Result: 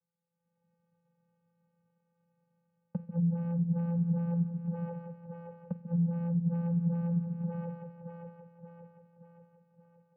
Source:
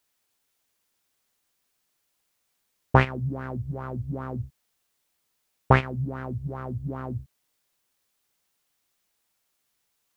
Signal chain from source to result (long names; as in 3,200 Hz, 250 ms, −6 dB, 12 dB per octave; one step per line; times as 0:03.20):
lower of the sound and its delayed copy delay 0.34 ms
low-pass filter 1,500 Hz 24 dB per octave
in parallel at −4 dB: soft clipping −19 dBFS, distortion −5 dB
on the sum: gate with flip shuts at −14 dBFS, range −31 dB
automatic gain control gain up to 16 dB
0:04.30–0:05.73: comb filter 1.9 ms, depth 65%
echo with a time of its own for lows and highs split 320 Hz, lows 139 ms, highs 576 ms, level −11.5 dB
on a send at −16 dB: convolution reverb, pre-delay 40 ms
on the sum: downward compressor 10 to 1, threshold −24 dBFS, peak gain reduction 18.5 dB
channel vocoder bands 8, square 170 Hz
level −2 dB